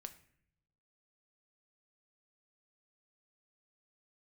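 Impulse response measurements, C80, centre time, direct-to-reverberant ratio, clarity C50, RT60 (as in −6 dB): 17.5 dB, 7 ms, 8.0 dB, 14.0 dB, 0.65 s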